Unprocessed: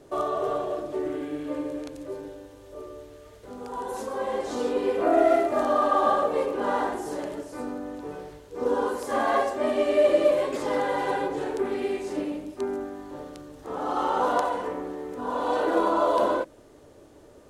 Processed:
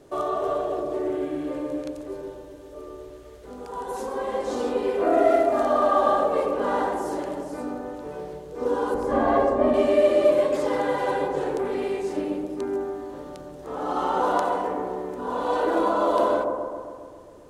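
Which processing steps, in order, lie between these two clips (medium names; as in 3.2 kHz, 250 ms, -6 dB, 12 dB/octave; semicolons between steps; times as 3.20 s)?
8.94–9.74 s: tilt EQ -3.5 dB/octave; feedback echo behind a low-pass 134 ms, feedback 63%, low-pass 970 Hz, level -3.5 dB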